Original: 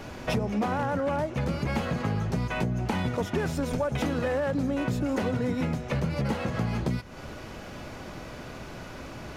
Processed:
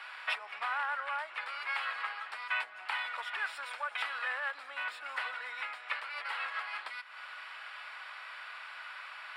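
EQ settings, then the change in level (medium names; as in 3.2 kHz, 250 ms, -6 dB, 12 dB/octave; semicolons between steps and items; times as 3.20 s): boxcar filter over 7 samples; high-pass 1.2 kHz 24 dB/octave; +4.5 dB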